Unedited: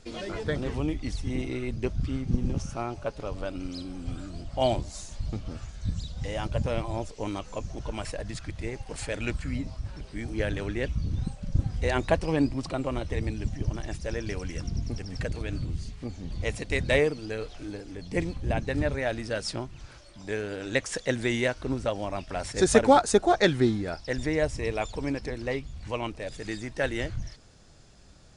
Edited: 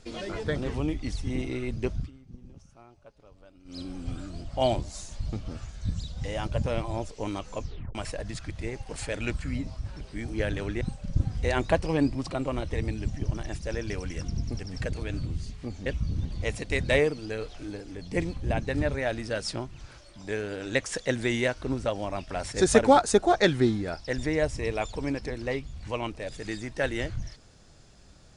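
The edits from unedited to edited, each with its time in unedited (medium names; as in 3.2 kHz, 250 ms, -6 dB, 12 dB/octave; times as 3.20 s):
1.95–3.81 s: dip -20.5 dB, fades 0.16 s
7.61 s: tape stop 0.34 s
10.81–11.20 s: move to 16.25 s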